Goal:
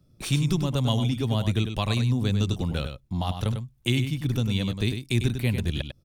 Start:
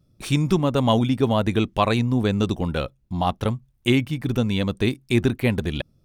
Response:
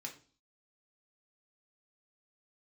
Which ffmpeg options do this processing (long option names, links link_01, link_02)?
-filter_complex "[0:a]acrossover=split=160|3000[link_01][link_02][link_03];[link_02]acompressor=threshold=-40dB:ratio=2[link_04];[link_01][link_04][link_03]amix=inputs=3:normalize=0,asplit=2[link_05][link_06];[link_06]aecho=0:1:99:0.398[link_07];[link_05][link_07]amix=inputs=2:normalize=0,volume=1dB"